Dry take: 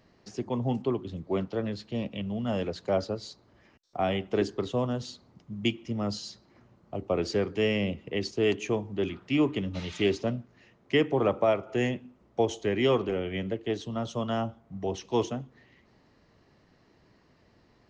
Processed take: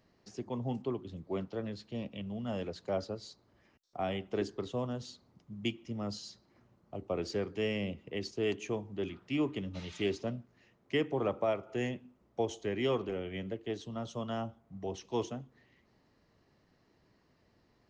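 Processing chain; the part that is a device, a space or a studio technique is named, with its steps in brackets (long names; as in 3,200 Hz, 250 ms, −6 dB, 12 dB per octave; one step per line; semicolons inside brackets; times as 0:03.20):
exciter from parts (in parallel at −13 dB: high-pass filter 3,500 Hz 12 dB per octave + soft clipping −33 dBFS, distortion −13 dB)
on the sum: level −7 dB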